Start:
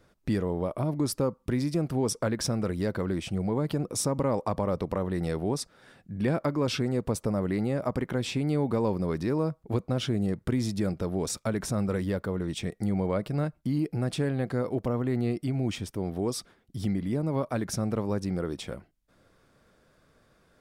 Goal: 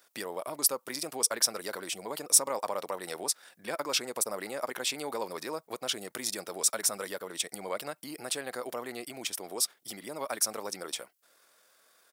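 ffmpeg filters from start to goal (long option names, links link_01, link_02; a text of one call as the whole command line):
ffmpeg -i in.wav -af "atempo=1.7,highpass=650,aemphasis=mode=production:type=75kf" out.wav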